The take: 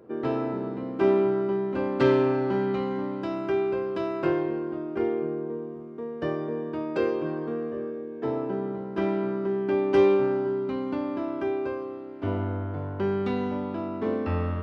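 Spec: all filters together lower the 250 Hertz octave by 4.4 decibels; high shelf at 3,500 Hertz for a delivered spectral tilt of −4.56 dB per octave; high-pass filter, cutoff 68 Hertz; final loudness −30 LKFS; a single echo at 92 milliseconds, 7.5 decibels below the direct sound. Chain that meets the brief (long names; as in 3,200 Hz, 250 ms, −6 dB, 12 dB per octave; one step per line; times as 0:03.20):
high-pass filter 68 Hz
parametric band 250 Hz −6.5 dB
high-shelf EQ 3,500 Hz +3.5 dB
single-tap delay 92 ms −7.5 dB
level −2 dB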